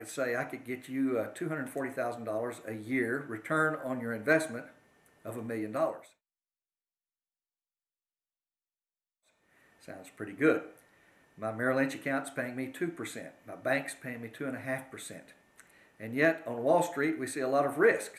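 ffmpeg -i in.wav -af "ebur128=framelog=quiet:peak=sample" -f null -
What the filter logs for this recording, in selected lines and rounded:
Integrated loudness:
  I:         -32.3 LUFS
  Threshold: -43.4 LUFS
Loudness range:
  LRA:         8.0 LU
  Threshold: -54.9 LUFS
  LRA low:   -40.6 LUFS
  LRA high:  -32.6 LUFS
Sample peak:
  Peak:      -11.9 dBFS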